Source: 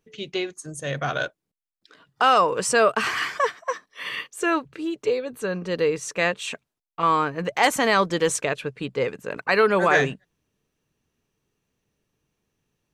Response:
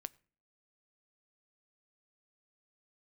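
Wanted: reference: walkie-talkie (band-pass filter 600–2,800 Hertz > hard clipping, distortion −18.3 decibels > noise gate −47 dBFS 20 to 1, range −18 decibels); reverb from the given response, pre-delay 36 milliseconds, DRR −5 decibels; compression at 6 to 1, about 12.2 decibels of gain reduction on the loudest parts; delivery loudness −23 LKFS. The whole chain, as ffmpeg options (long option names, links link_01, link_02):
-filter_complex "[0:a]acompressor=threshold=-27dB:ratio=6,asplit=2[link_01][link_02];[1:a]atrim=start_sample=2205,adelay=36[link_03];[link_02][link_03]afir=irnorm=-1:irlink=0,volume=9dB[link_04];[link_01][link_04]amix=inputs=2:normalize=0,highpass=600,lowpass=2800,asoftclip=type=hard:threshold=-18dB,agate=range=-18dB:threshold=-47dB:ratio=20,volume=6dB"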